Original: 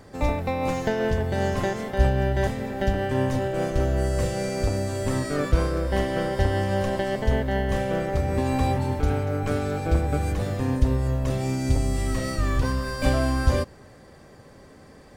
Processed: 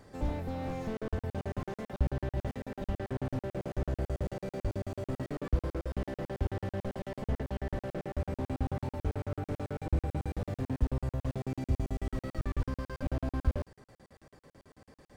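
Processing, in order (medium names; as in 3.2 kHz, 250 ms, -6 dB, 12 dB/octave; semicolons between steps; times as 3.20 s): crackling interface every 0.11 s, samples 2048, zero, from 0.97 s; slew-rate limiter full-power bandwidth 23 Hz; trim -7.5 dB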